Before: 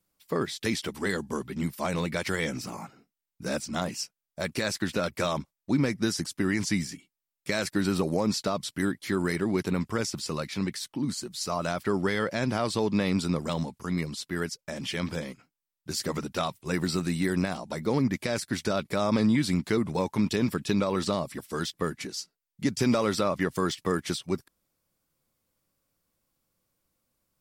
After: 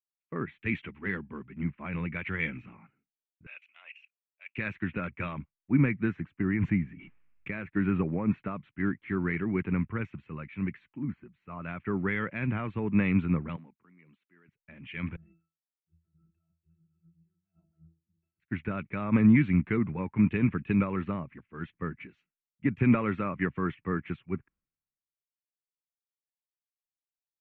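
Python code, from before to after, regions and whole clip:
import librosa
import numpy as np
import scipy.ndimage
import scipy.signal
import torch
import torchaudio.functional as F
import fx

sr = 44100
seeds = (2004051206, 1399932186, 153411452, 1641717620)

y = fx.chain(x, sr, fx.highpass(hz=610.0, slope=24),
    fx.peak_eq(hz=2700.0, db=13.5, octaves=0.78),
    fx.level_steps(step_db=19), at=(3.46, 4.56))
y = fx.chain(y, sr, fx.peak_eq(hz=4200.0, db=-9.0, octaves=2.3),
    fx.pre_swell(db_per_s=24.0), at=(6.41, 7.69))
y = fx.chain(y, sr, fx.highpass(hz=220.0, slope=12),
    fx.level_steps(step_db=14), at=(13.56, 14.48))
y = fx.chain(y, sr, fx.over_compress(threshold_db=-39.0, ratio=-1.0),
    fx.octave_resonator(note='E', decay_s=0.35), at=(15.16, 18.4))
y = scipy.signal.sosfilt(scipy.signal.ellip(4, 1.0, 50, 2500.0, 'lowpass', fs=sr, output='sos'), y)
y = fx.peak_eq(y, sr, hz=640.0, db=-14.5, octaves=1.8)
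y = fx.band_widen(y, sr, depth_pct=100)
y = F.gain(torch.from_numpy(y), 3.0).numpy()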